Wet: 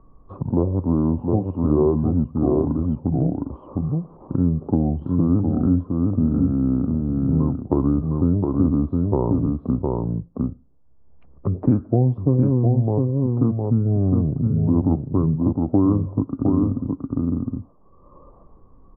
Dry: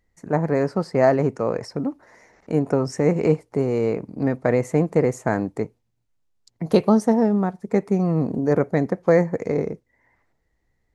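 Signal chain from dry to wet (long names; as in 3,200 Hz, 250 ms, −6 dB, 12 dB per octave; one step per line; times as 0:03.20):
wrong playback speed 78 rpm record played at 45 rpm
low-pass filter 1,000 Hz 24 dB per octave
on a send: single-tap delay 710 ms −5 dB
on the sum: multiband upward and downward compressor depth 70%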